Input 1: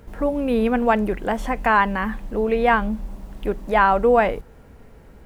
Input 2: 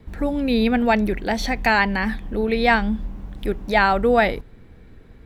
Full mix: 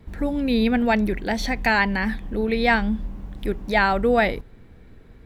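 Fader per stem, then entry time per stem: -16.5 dB, -1.5 dB; 0.00 s, 0.00 s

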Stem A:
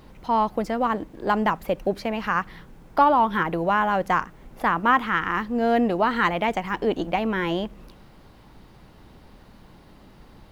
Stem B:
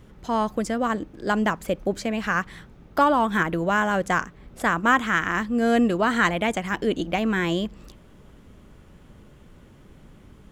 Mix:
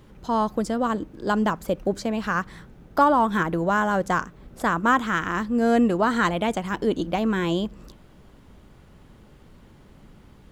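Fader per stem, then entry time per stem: -8.0 dB, -2.0 dB; 0.00 s, 0.00 s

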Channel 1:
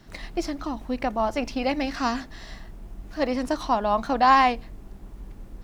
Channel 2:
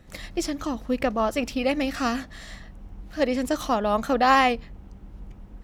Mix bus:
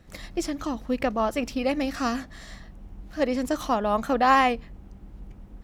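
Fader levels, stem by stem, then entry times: -14.0 dB, -2.5 dB; 0.00 s, 0.00 s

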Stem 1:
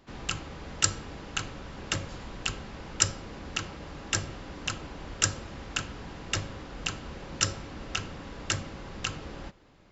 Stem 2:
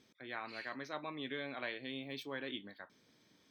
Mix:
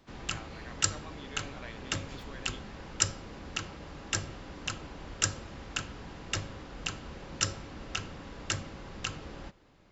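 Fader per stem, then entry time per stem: -3.0 dB, -5.5 dB; 0.00 s, 0.00 s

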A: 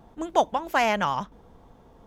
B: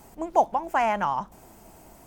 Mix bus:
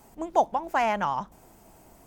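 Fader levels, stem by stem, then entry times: -12.5 dB, -4.0 dB; 0.00 s, 0.00 s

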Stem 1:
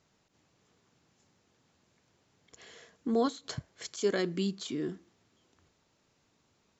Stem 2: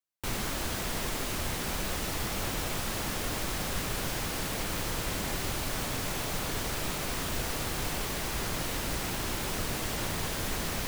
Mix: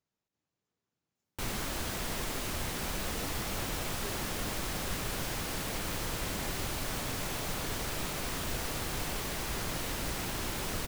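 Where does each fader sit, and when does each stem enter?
-19.0 dB, -2.5 dB; 0.00 s, 1.15 s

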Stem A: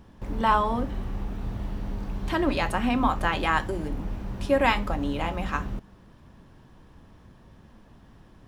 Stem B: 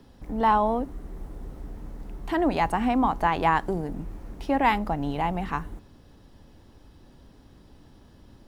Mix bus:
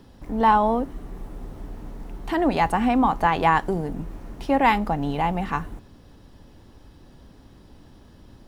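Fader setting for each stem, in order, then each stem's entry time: -10.5 dB, +3.0 dB; 0.00 s, 0.00 s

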